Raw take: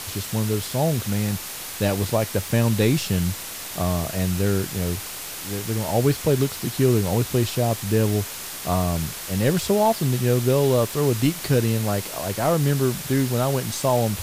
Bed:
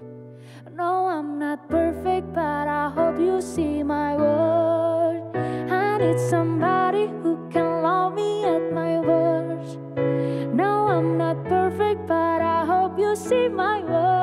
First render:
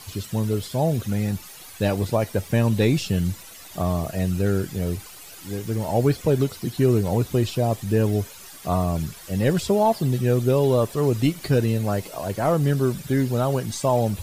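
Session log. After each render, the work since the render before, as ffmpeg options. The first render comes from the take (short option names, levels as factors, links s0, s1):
-af "afftdn=nr=13:nf=-34"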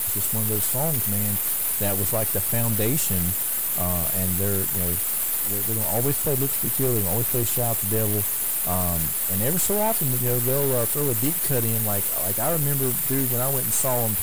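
-af "aexciter=amount=15.2:drive=4.4:freq=7600,aeval=exprs='(tanh(7.94*val(0)+0.55)-tanh(0.55))/7.94':c=same"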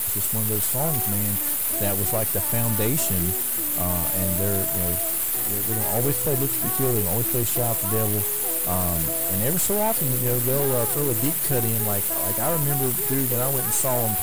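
-filter_complex "[1:a]volume=0.178[s0];[0:a][s0]amix=inputs=2:normalize=0"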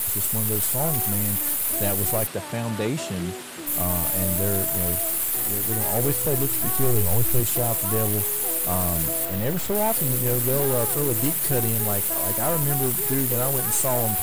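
-filter_complex "[0:a]asplit=3[s0][s1][s2];[s0]afade=t=out:st=2.26:d=0.02[s3];[s1]highpass=130,lowpass=5000,afade=t=in:st=2.26:d=0.02,afade=t=out:st=3.66:d=0.02[s4];[s2]afade=t=in:st=3.66:d=0.02[s5];[s3][s4][s5]amix=inputs=3:normalize=0,asettb=1/sr,asplit=3[s6][s7][s8];[s6]atrim=end=6.274[s9];[s7]atrim=start=6.27:end=7.4,asetpts=PTS-STARTPTS,afade=t=in:d=0.004:c=qsin,afade=t=out:st=1.126:d=0.004:c=qsin,asubboost=boost=10.5:cutoff=100[s10];[s8]atrim=start=7.396[s11];[s9][s10]acrossfade=d=0.004:c1=hsin:c2=qsin[s12];[s12][s11]acrossfade=d=0.004:c1=qsin:c2=hsin,asettb=1/sr,asplit=3[s13][s14][s15];[s13]atrim=end=9.254[s16];[s14]atrim=start=9.25:end=9.75,asetpts=PTS-STARTPTS,afade=t=in:d=0.004:c=qsin,afade=t=out:st=0.496:d=0.004:c=qsin,equalizer=f=9500:w=0.81:g=-12.5[s17];[s15]atrim=start=9.746[s18];[s16][s17]acrossfade=d=0.004:c1=hsin:c2=qsin[s19];[s19][s18]acrossfade=d=0.004:c1=qsin:c2=hsin"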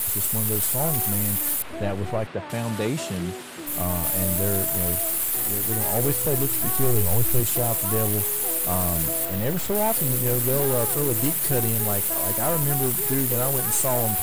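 -filter_complex "[0:a]asettb=1/sr,asplit=3[s0][s1][s2];[s0]atrim=end=1.624[s3];[s1]atrim=start=1.62:end=2.5,asetpts=PTS-STARTPTS,afade=t=in:d=0.004:c=qsin,afade=t=out:st=0.876:d=0.004:c=qsin,lowpass=2600[s4];[s2]atrim=start=2.496[s5];[s3][s4]acrossfade=d=0.004:c1=hsin:c2=qsin[s6];[s6][s5]acrossfade=d=0.004:c1=qsin:c2=hsin,asettb=1/sr,asplit=3[s7][s8][s9];[s7]atrim=end=3.174[s10];[s8]atrim=start=3.17:end=4.04,asetpts=PTS-STARTPTS,afade=t=in:d=0.004:c=qsin,afade=t=out:st=0.866:d=0.004:c=qsin,highshelf=f=4800:g=-4[s11];[s9]atrim=start=4.036[s12];[s10][s11]acrossfade=d=0.004:c1=hsin:c2=qsin[s13];[s13][s12]acrossfade=d=0.004:c1=qsin:c2=hsin"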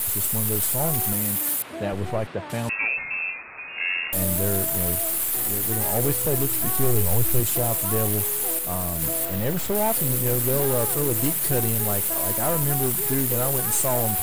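-filter_complex "[0:a]asettb=1/sr,asplit=3[s0][s1][s2];[s0]atrim=end=1.134[s3];[s1]atrim=start=1.13:end=1.93,asetpts=PTS-STARTPTS,afade=t=in:d=0.004:c=qsin,afade=t=out:st=0.796:d=0.004:c=qsin,highpass=120[s4];[s2]atrim=start=1.926[s5];[s3][s4]acrossfade=d=0.004:c1=hsin:c2=qsin[s6];[s6][s5]acrossfade=d=0.004:c1=qsin:c2=hsin,asettb=1/sr,asplit=3[s7][s8][s9];[s7]atrim=end=2.694[s10];[s8]atrim=start=2.69:end=4.13,asetpts=PTS-STARTPTS,afade=t=in:d=0.004:c=qsin,afade=t=out:st=1.436:d=0.004:c=qsin,lowpass=f=2400:t=q:w=0.5098,lowpass=f=2400:t=q:w=0.6013,lowpass=f=2400:t=q:w=0.9,lowpass=f=2400:t=q:w=2.563,afreqshift=-2800[s11];[s9]atrim=start=4.126[s12];[s10][s11]acrossfade=d=0.004:c1=hsin:c2=qsin[s13];[s13][s12]acrossfade=d=0.004:c1=qsin:c2=hsin,asplit=3[s14][s15][s16];[s14]atrim=end=8.592[s17];[s15]atrim=start=8.588:end=9.022,asetpts=PTS-STARTPTS,volume=0.668[s18];[s16]atrim=start=9.018[s19];[s17][s18]acrossfade=d=0.004:c1=hsin:c2=hsin[s20];[s20][s19]acrossfade=d=0.004:c1=hsin:c2=hsin"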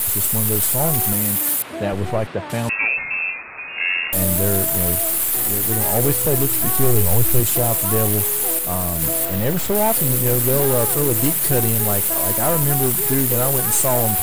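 -af "volume=1.78"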